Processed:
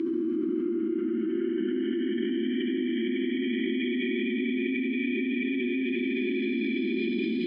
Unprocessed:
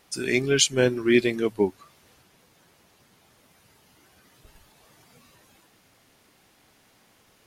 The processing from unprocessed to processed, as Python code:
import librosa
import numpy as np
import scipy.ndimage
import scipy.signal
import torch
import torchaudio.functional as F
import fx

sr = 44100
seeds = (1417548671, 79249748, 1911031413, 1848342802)

y = fx.noise_reduce_blind(x, sr, reduce_db=15)
y = fx.paulstretch(y, sr, seeds[0], factor=44.0, window_s=0.05, from_s=1.04)
y = fx.vowel_filter(y, sr, vowel='i')
y = fx.env_flatten(y, sr, amount_pct=100)
y = F.gain(torch.from_numpy(y), -8.0).numpy()